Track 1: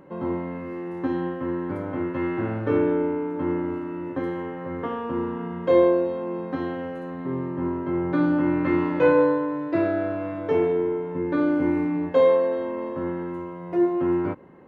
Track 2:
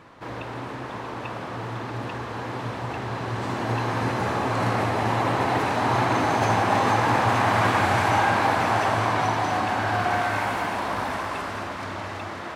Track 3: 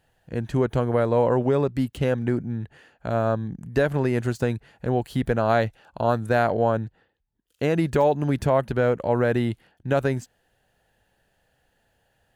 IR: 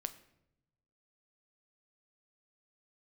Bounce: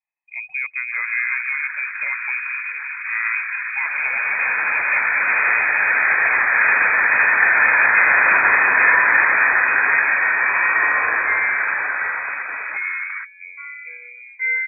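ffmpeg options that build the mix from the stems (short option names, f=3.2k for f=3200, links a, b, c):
-filter_complex "[0:a]flanger=delay=18.5:depth=5.5:speed=0.17,adelay=2250,volume=-5.5dB[a];[1:a]afwtdn=0.02,adelay=700,volume=3dB[b];[2:a]alimiter=limit=-12.5dB:level=0:latency=1:release=298,volume=-3.5dB[c];[a][b][c]amix=inputs=3:normalize=0,afftdn=nr=22:nf=-37,adynamicequalizer=threshold=0.0282:dfrequency=1000:dqfactor=1.1:tfrequency=1000:tqfactor=1.1:attack=5:release=100:ratio=0.375:range=2.5:mode=boostabove:tftype=bell,lowpass=f=2.2k:t=q:w=0.5098,lowpass=f=2.2k:t=q:w=0.6013,lowpass=f=2.2k:t=q:w=0.9,lowpass=f=2.2k:t=q:w=2.563,afreqshift=-2600"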